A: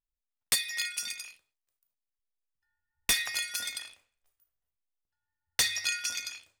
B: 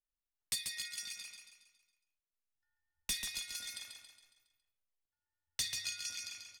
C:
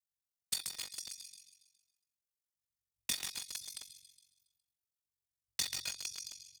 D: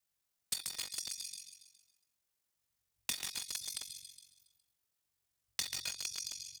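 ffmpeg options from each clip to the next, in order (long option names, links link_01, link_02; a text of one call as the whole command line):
ffmpeg -i in.wav -filter_complex "[0:a]highshelf=frequency=11000:gain=-8.5,acrossover=split=260|3000[link_01][link_02][link_03];[link_02]acompressor=threshold=-47dB:ratio=4[link_04];[link_01][link_04][link_03]amix=inputs=3:normalize=0,aecho=1:1:138|276|414|552|690|828:0.531|0.25|0.117|0.0551|0.0259|0.0122,volume=-7dB" out.wav
ffmpeg -i in.wav -filter_complex "[0:a]highpass=frequency=70:width=0.5412,highpass=frequency=70:width=1.3066,acrossover=split=210|3600[link_01][link_02][link_03];[link_02]acrusher=bits=6:mix=0:aa=0.000001[link_04];[link_01][link_04][link_03]amix=inputs=3:normalize=0,aeval=exprs='val(0)*sin(2*PI*23*n/s)':channel_layout=same,volume=3.5dB" out.wav
ffmpeg -i in.wav -af "acompressor=threshold=-46dB:ratio=3,volume=8.5dB" out.wav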